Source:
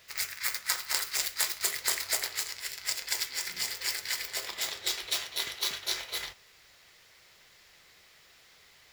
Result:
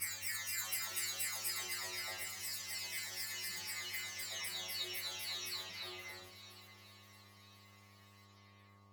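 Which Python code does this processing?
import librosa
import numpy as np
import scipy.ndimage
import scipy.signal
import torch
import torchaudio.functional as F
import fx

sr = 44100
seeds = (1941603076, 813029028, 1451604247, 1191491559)

y = fx.spec_delay(x, sr, highs='early', ms=677)
y = fx.vibrato(y, sr, rate_hz=2.0, depth_cents=8.2)
y = fx.dmg_buzz(y, sr, base_hz=100.0, harmonics=12, level_db=-50.0, tilt_db=-4, odd_only=False)
y = fx.stiff_resonator(y, sr, f0_hz=89.0, decay_s=0.57, stiffness=0.002)
y = fx.echo_swing(y, sr, ms=1041, ratio=1.5, feedback_pct=32, wet_db=-13)
y = F.gain(torch.from_numpy(y), 4.0).numpy()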